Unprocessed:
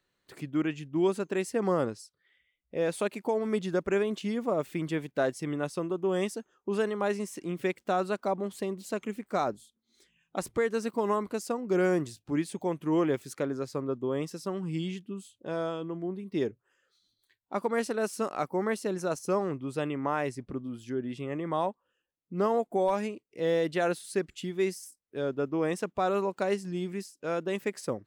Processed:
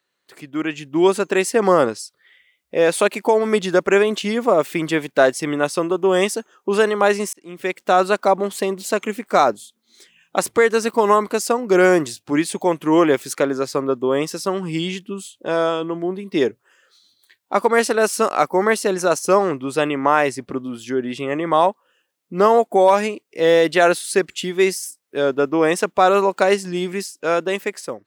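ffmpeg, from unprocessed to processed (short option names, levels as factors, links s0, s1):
-filter_complex "[0:a]asplit=2[s0][s1];[s0]atrim=end=7.33,asetpts=PTS-STARTPTS,afade=t=out:st=7.326:d=0.004:c=hsin[s2];[s1]atrim=start=7.33,asetpts=PTS-STARTPTS,afade=t=in:d=0.69[s3];[s2][s3]concat=n=2:v=0:a=1,highpass=f=500:p=1,dynaudnorm=f=160:g=9:m=3.55,volume=1.78"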